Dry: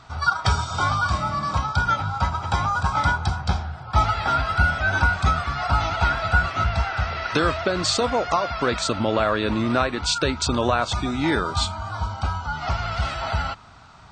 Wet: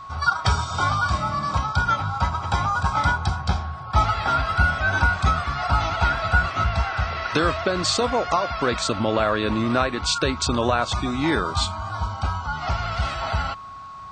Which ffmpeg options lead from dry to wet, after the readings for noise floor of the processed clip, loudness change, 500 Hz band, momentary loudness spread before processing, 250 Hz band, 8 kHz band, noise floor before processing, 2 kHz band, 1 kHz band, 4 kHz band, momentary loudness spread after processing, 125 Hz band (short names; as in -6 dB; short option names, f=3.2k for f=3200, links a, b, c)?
-36 dBFS, 0.0 dB, 0.0 dB, 6 LU, 0.0 dB, 0.0 dB, -39 dBFS, 0.0 dB, +0.5 dB, 0.0 dB, 6 LU, 0.0 dB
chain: -af "aeval=exprs='val(0)+0.0158*sin(2*PI*1100*n/s)':c=same"